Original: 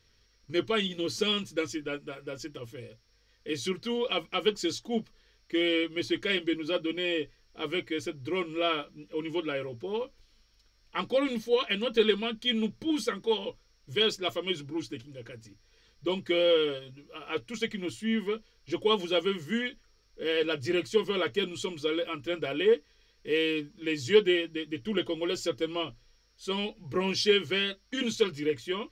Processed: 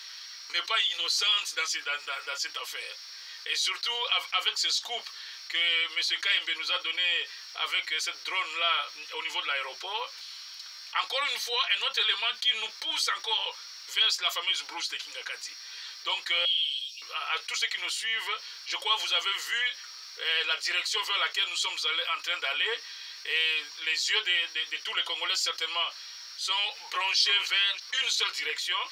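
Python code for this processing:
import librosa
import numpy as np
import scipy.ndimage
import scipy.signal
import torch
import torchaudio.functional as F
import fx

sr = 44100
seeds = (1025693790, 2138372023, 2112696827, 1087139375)

y = fx.ellip_highpass(x, sr, hz=2900.0, order=4, stop_db=70, at=(16.45, 17.02))
y = fx.echo_throw(y, sr, start_s=26.61, length_s=0.54, ms=320, feedback_pct=30, wet_db=-10.5)
y = scipy.signal.sosfilt(scipy.signal.butter(4, 880.0, 'highpass', fs=sr, output='sos'), y)
y = fx.peak_eq(y, sr, hz=4300.0, db=7.0, octaves=0.61)
y = fx.env_flatten(y, sr, amount_pct=50)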